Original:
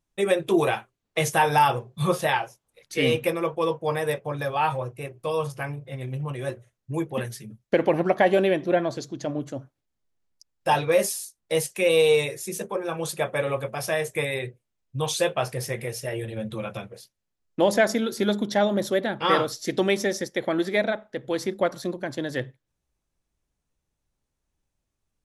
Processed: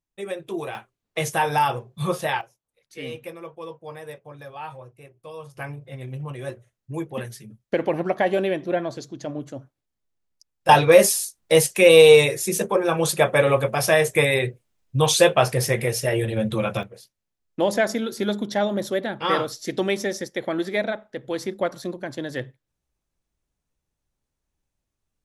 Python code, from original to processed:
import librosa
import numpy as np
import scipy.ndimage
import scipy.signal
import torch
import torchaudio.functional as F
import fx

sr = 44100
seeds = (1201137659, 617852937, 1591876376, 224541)

y = fx.gain(x, sr, db=fx.steps((0.0, -9.0), (0.75, -1.5), (2.41, -12.0), (5.57, -2.0), (10.69, 8.0), (16.83, -1.0)))